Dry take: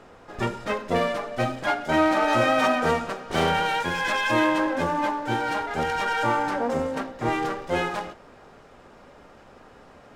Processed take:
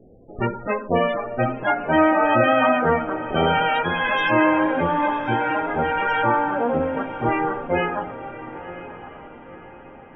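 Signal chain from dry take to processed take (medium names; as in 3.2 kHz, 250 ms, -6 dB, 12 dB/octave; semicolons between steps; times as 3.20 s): level-controlled noise filter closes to 330 Hz, open at -21.5 dBFS; loudest bins only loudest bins 32; echo that smears into a reverb 1036 ms, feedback 43%, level -13 dB; trim +4 dB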